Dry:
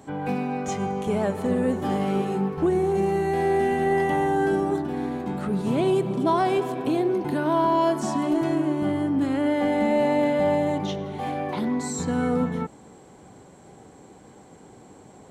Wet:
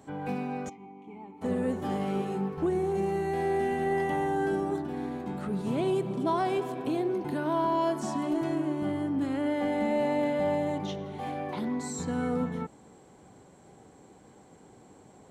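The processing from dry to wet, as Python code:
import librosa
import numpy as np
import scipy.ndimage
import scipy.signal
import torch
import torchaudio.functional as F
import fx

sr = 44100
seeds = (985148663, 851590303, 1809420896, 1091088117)

y = fx.vowel_filter(x, sr, vowel='u', at=(0.68, 1.41), fade=0.02)
y = F.gain(torch.from_numpy(y), -6.0).numpy()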